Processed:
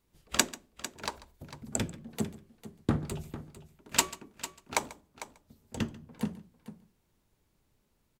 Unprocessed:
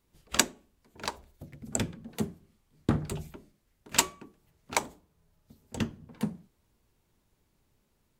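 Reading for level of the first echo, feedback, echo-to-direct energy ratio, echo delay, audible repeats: -20.0 dB, no steady repeat, -13.0 dB, 0.141 s, 3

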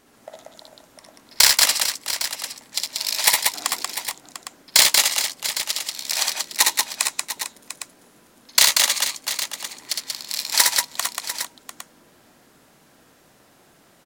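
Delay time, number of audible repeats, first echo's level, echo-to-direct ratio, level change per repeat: 60 ms, 5, -3.5 dB, 0.5 dB, no steady repeat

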